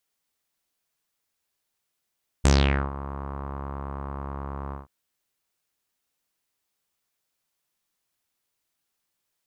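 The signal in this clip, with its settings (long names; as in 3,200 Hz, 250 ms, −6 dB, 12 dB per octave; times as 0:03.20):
subtractive voice saw C#2 12 dB per octave, low-pass 1,100 Hz, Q 3.9, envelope 3 octaves, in 0.41 s, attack 14 ms, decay 0.45 s, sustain −18 dB, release 0.15 s, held 2.28 s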